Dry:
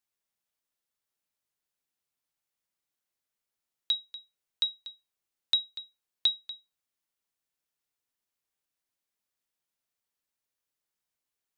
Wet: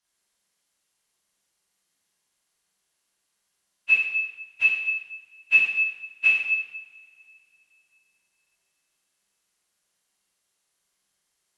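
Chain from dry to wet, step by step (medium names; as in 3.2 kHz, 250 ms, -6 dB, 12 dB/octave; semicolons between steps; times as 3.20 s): frequency axis rescaled in octaves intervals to 86%; two-slope reverb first 0.92 s, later 3.3 s, from -24 dB, DRR -10 dB; trim +2.5 dB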